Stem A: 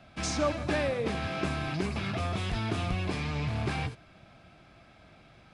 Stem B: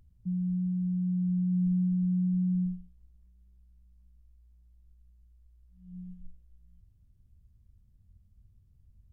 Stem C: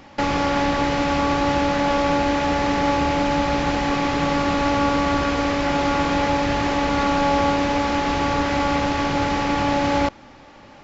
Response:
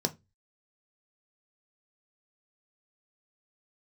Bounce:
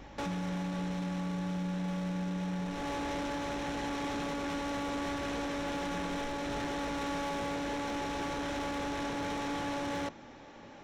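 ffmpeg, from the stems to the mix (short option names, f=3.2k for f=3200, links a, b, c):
-filter_complex "[1:a]aeval=exprs='val(0)+0.00251*(sin(2*PI*50*n/s)+sin(2*PI*2*50*n/s)/2+sin(2*PI*3*50*n/s)/3+sin(2*PI*4*50*n/s)/4+sin(2*PI*5*50*n/s)/5)':c=same,volume=-0.5dB[a];[2:a]asoftclip=type=tanh:threshold=-27.5dB,volume=-7.5dB,asplit=2[b][c];[c]volume=-15.5dB[d];[3:a]atrim=start_sample=2205[e];[d][e]afir=irnorm=-1:irlink=0[f];[a][b][f]amix=inputs=3:normalize=0,alimiter=level_in=5dB:limit=-24dB:level=0:latency=1:release=237,volume=-5dB"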